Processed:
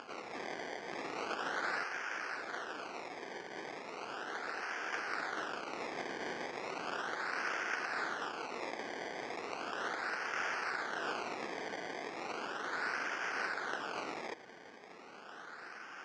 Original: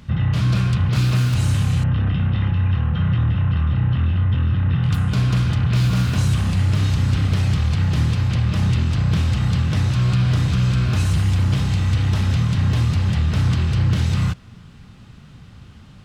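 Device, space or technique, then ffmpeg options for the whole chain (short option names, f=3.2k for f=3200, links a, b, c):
circuit-bent sampling toy: -af "highpass=440,highshelf=f=2.6k:g=3.5,afftfilt=real='re*lt(hypot(re,im),0.0251)':imag='im*lt(hypot(re,im),0.0251)':win_size=1024:overlap=0.75,acrusher=samples=22:mix=1:aa=0.000001:lfo=1:lforange=22:lforate=0.36,highpass=430,equalizer=f=590:t=q:w=4:g=-6,equalizer=f=1k:t=q:w=4:g=-4,equalizer=f=1.5k:t=q:w=4:g=8,equalizer=f=3.7k:t=q:w=4:g=-7,lowpass=f=5.6k:w=0.5412,lowpass=f=5.6k:w=1.3066,volume=5dB"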